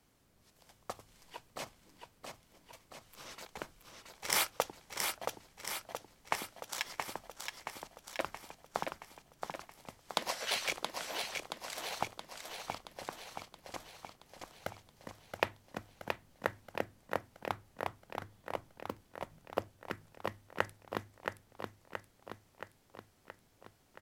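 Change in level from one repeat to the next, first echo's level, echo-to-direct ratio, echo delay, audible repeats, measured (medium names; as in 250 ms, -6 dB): -4.5 dB, -5.0 dB, -3.0 dB, 674 ms, 7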